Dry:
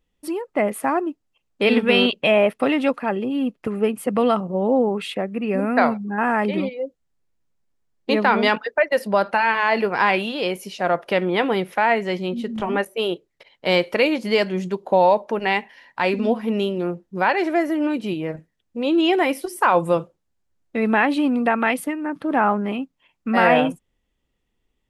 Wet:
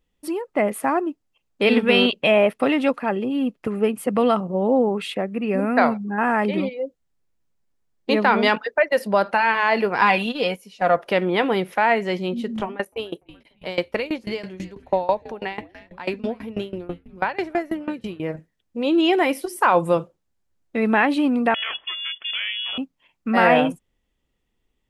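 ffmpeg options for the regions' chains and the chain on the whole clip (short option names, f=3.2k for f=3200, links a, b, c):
-filter_complex "[0:a]asettb=1/sr,asplit=3[a][b][c];[a]atrim=end=10.014[d];[b]atrim=start=10.01:end=10.97,asetpts=PTS-STARTPTS,afade=t=in:d=0.004:c=qsin,afade=t=out:st=0.956:d=0.004:c=qsin,agate=range=-12dB:threshold=-28dB:ratio=16:release=100:detection=peak,aecho=1:1:4.1:0.58,atrim=end_sample=42336[e];[c]atrim=start=10.966[f];[d][e]acrossfade=d=0.004:c1=hsin:c2=qsin[g];[g][f]acrossfade=d=0.004:c1=qsin:c2=hsin,asettb=1/sr,asplit=3[h][i][j];[h]atrim=end=12.634[k];[i]atrim=start=12.63:end=18.2,asetpts=PTS-STARTPTS,afade=t=in:d=0.004:c=qsin,afade=t=out:st=5.566:d=0.004:c=qsin,asplit=6[l][m][n][o][p][q];[m]adelay=292,afreqshift=-120,volume=-19.5dB[r];[n]adelay=584,afreqshift=-240,volume=-24.5dB[s];[o]adelay=876,afreqshift=-360,volume=-29.6dB[t];[p]adelay=1168,afreqshift=-480,volume=-34.6dB[u];[q]adelay=1460,afreqshift=-600,volume=-39.6dB[v];[l][r][s][t][u][v]amix=inputs=6:normalize=0,atrim=end_sample=245637,aeval=exprs='val(0)*pow(10,-21*if(lt(mod(6.1*n/s,1),2*abs(6.1)/1000),1-mod(6.1*n/s,1)/(2*abs(6.1)/1000),(mod(6.1*n/s,1)-2*abs(6.1)/1000)/(1-2*abs(6.1)/1000))/20)':c=same[w];[j]atrim=start=18.196[x];[k][w]acrossfade=d=0.004:c1=hsin:c2=qsin[y];[y][x]acrossfade=d=0.004:c1=qsin:c2=hsin,asettb=1/sr,asplit=3[z][aa][ab];[z]atrim=end=21.544[ac];[aa]atrim=start=21.54:end=22.78,asetpts=PTS-STARTPTS,afade=t=in:d=0.004:c=qsin,afade=t=out:st=1.236:d=0.004:c=qsin,acompressor=threshold=-22dB:ratio=2.5:attack=3.2:release=140:knee=1:detection=peak,aeval=exprs='val(0)*sin(2*PI*370*n/s)':c=same,lowpass=f=3k:t=q:w=0.5098,lowpass=f=3k:t=q:w=0.6013,lowpass=f=3k:t=q:w=0.9,lowpass=f=3k:t=q:w=2.563,afreqshift=-3500[ad];[ab]atrim=start=22.776[ae];[ac][ad]acrossfade=d=0.004:c1=hsin:c2=qsin[af];[af][ae]acrossfade=d=0.004:c1=qsin:c2=hsin"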